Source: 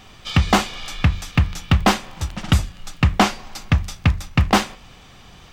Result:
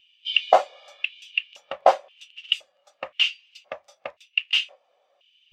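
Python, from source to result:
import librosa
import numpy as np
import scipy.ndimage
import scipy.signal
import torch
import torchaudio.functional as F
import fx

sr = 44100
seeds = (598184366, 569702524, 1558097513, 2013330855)

y = fx.dynamic_eq(x, sr, hz=160.0, q=0.88, threshold_db=-24.0, ratio=4.0, max_db=-4)
y = fx.filter_lfo_highpass(y, sr, shape='square', hz=0.96, low_hz=570.0, high_hz=2800.0, q=5.5)
y = fx.spectral_expand(y, sr, expansion=1.5)
y = y * 10.0 ** (-5.5 / 20.0)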